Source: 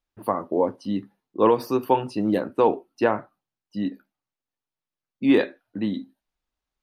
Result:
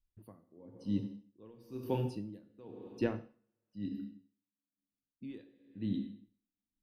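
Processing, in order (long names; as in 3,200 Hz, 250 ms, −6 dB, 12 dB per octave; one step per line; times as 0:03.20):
guitar amp tone stack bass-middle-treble 10-0-1
dense smooth reverb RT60 1.1 s, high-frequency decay 1×, DRR 7 dB
tremolo with a sine in dB 1 Hz, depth 27 dB
level +12 dB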